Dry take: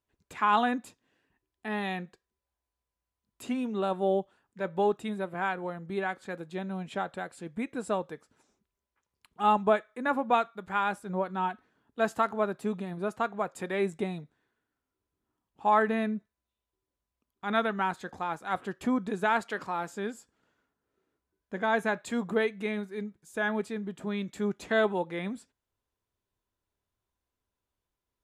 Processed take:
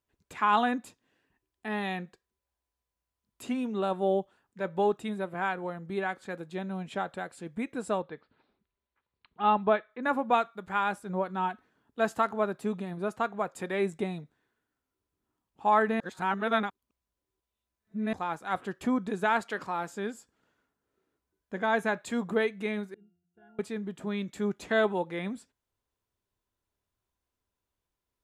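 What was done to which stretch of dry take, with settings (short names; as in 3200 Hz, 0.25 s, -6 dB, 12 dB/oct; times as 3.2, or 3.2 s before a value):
8.02–10.03 elliptic low-pass 4300 Hz
16–18.13 reverse
22.94–23.59 octave resonator F, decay 0.65 s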